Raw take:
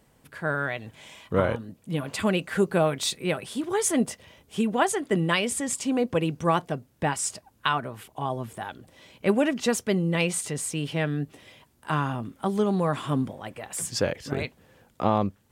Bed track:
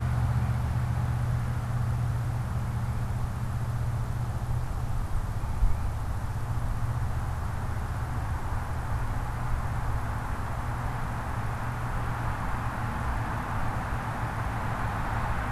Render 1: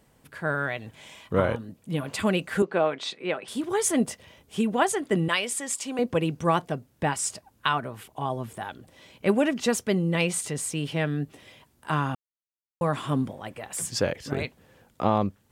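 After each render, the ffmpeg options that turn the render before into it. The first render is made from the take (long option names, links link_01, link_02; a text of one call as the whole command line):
ffmpeg -i in.wav -filter_complex "[0:a]asettb=1/sr,asplit=3[link_01][link_02][link_03];[link_01]atrim=end=2.624[link_04];[link_02]atrim=start=2.62:end=3.48,asetpts=PTS-STARTPTS,afade=type=in:duration=0.004:curve=qsin,afade=type=out:start_time=0.856:duration=0.004:curve=qsin,highpass=300,lowpass=3400[link_05];[link_03]atrim=start=3.476[link_06];[link_04][link_05]acrossfade=duration=0.004:curve1=hsin:curve2=qsin[link_07];[link_07][link_06]acrossfade=duration=0.004:curve1=qsin:curve2=hsin,asettb=1/sr,asplit=3[link_08][link_09][link_10];[link_08]atrim=end=5.284[link_11];[link_09]atrim=start=5.28:end=5.99,asetpts=PTS-STARTPTS,afade=type=in:duration=0.004:curve=qsin,afade=type=out:start_time=0.706:duration=0.004:curve=qsin,highpass=frequency=670:poles=1[link_12];[link_10]atrim=start=5.986[link_13];[link_11][link_12]acrossfade=duration=0.004:curve1=hsin:curve2=qsin[link_14];[link_14][link_13]acrossfade=duration=0.004:curve1=qsin:curve2=hsin,asplit=3[link_15][link_16][link_17];[link_15]atrim=end=12.15,asetpts=PTS-STARTPTS,afade=type=out:start_time=12.146:duration=0.004:curve=hsin[link_18];[link_16]atrim=start=12.15:end=12.81,asetpts=PTS-STARTPTS,volume=0[link_19];[link_17]atrim=start=12.81,asetpts=PTS-STARTPTS,afade=type=in:duration=0.004:curve=hsin[link_20];[link_18][link_19][link_20]concat=n=3:v=0:a=1" out.wav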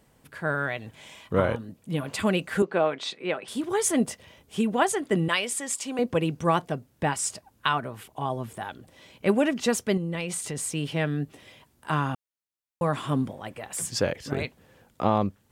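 ffmpeg -i in.wav -filter_complex "[0:a]asettb=1/sr,asplit=3[link_01][link_02][link_03];[link_01]atrim=end=9.974[link_04];[link_02]atrim=start=9.97:end=10.57,asetpts=PTS-STARTPTS,afade=type=in:duration=0.004:curve=qsin,afade=type=out:start_time=0.596:duration=0.004:curve=qsin,acompressor=threshold=-27dB:ratio=5:attack=3.2:release=140:knee=1:detection=peak[link_05];[link_03]atrim=start=10.566[link_06];[link_04][link_05]acrossfade=duration=0.004:curve1=hsin:curve2=qsin[link_07];[link_07][link_06]acrossfade=duration=0.004:curve1=qsin:curve2=hsin" out.wav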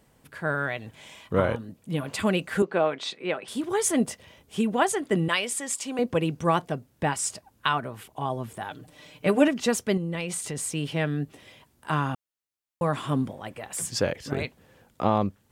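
ffmpeg -i in.wav -filter_complex "[0:a]asettb=1/sr,asplit=3[link_01][link_02][link_03];[link_01]atrim=end=8.704[link_04];[link_02]atrim=start=8.7:end=9.48,asetpts=PTS-STARTPTS,afade=type=in:duration=0.004:curve=qsin,afade=type=out:start_time=0.776:duration=0.004:curve=qsin,aecho=1:1:6.7:0.91,atrim=end_sample=34398[link_05];[link_03]atrim=start=9.476[link_06];[link_04][link_05]acrossfade=duration=0.004:curve1=hsin:curve2=qsin[link_07];[link_07][link_06]acrossfade=duration=0.004:curve1=qsin:curve2=hsin" out.wav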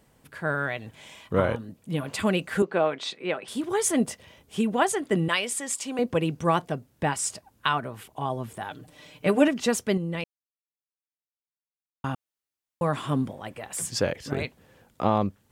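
ffmpeg -i in.wav -filter_complex "[0:a]asplit=3[link_01][link_02][link_03];[link_01]atrim=end=10.24,asetpts=PTS-STARTPTS,afade=type=out:start_time=10.236:duration=0.004:curve=hsin[link_04];[link_02]atrim=start=10.24:end=12.04,asetpts=PTS-STARTPTS,volume=0[link_05];[link_03]atrim=start=12.04,asetpts=PTS-STARTPTS,afade=type=in:duration=0.004:curve=hsin[link_06];[link_04][link_05][link_06]concat=n=3:v=0:a=1" out.wav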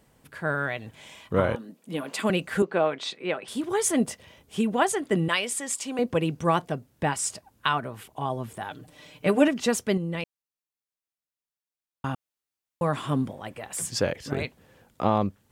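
ffmpeg -i in.wav -filter_complex "[0:a]asettb=1/sr,asplit=3[link_01][link_02][link_03];[link_01]atrim=end=1.554[link_04];[link_02]atrim=start=1.55:end=2.3,asetpts=PTS-STARTPTS,afade=type=in:duration=0.004:curve=qsin,afade=type=out:start_time=0.746:duration=0.004:curve=qsin,highpass=frequency=200:width=0.5412,highpass=frequency=200:width=1.3066[link_05];[link_03]atrim=start=2.296[link_06];[link_04][link_05]acrossfade=duration=0.004:curve1=hsin:curve2=qsin[link_07];[link_07][link_06]acrossfade=duration=0.004:curve1=qsin:curve2=hsin" out.wav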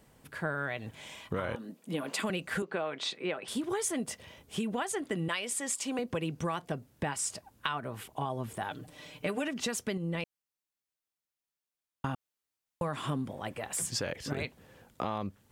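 ffmpeg -i in.wav -filter_complex "[0:a]acrossover=split=1200[link_01][link_02];[link_01]alimiter=limit=-20dB:level=0:latency=1:release=167[link_03];[link_03][link_02]amix=inputs=2:normalize=0,acompressor=threshold=-30dB:ratio=5" out.wav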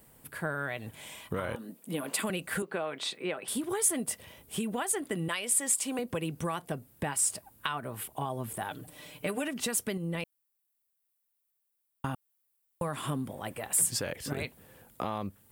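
ffmpeg -i in.wav -af "aexciter=amount=4.4:drive=3.7:freq=8400" out.wav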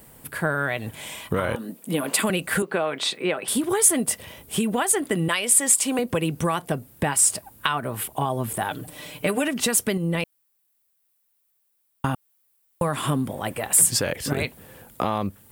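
ffmpeg -i in.wav -af "volume=9.5dB" out.wav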